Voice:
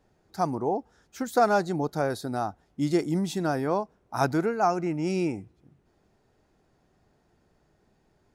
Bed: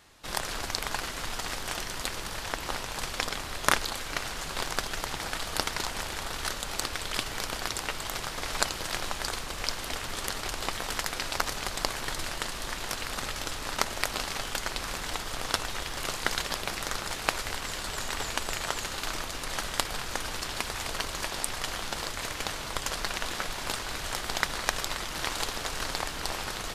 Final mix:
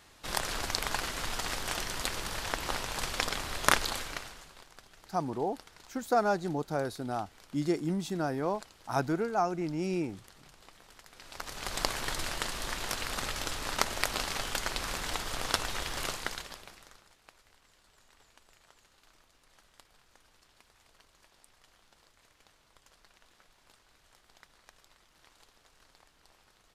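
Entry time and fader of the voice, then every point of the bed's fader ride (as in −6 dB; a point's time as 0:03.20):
4.75 s, −5.0 dB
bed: 0:03.98 −0.5 dB
0:04.66 −23.5 dB
0:11.06 −23.5 dB
0:11.76 −1 dB
0:16.03 −1 dB
0:17.17 −30 dB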